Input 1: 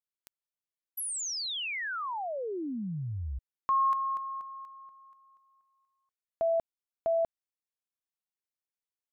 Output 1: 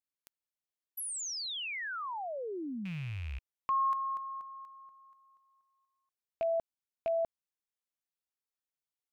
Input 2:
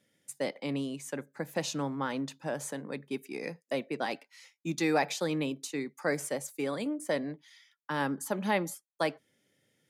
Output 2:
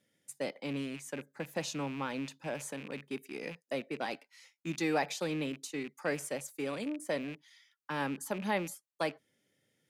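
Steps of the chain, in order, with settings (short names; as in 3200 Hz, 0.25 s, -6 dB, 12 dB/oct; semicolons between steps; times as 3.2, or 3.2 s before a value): rattling part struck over -47 dBFS, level -33 dBFS; gain -3.5 dB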